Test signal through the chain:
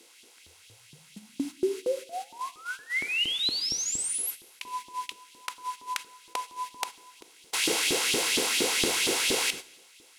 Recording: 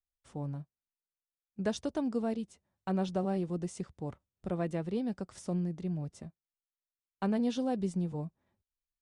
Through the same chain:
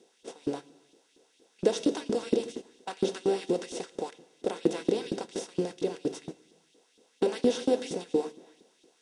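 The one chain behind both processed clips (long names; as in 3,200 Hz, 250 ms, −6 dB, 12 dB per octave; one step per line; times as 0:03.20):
compressor on every frequency bin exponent 0.4
flat-topped bell 1,100 Hz −9.5 dB
mains-hum notches 50/100/150/200 Hz
notch comb filter 600 Hz
auto-filter high-pass saw up 4.3 Hz 290–3,700 Hz
low-shelf EQ 200 Hz +6 dB
reverb whose tail is shaped and stops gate 440 ms falling, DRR 10.5 dB
noise gate −39 dBFS, range −10 dB
level +3.5 dB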